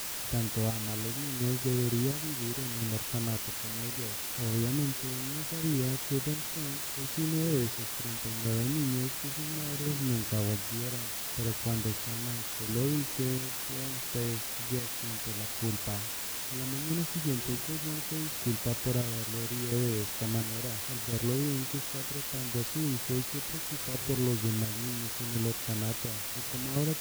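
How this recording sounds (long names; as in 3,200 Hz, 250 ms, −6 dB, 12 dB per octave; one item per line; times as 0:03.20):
chopped level 0.71 Hz, depth 60%, duty 50%
a quantiser's noise floor 6 bits, dither triangular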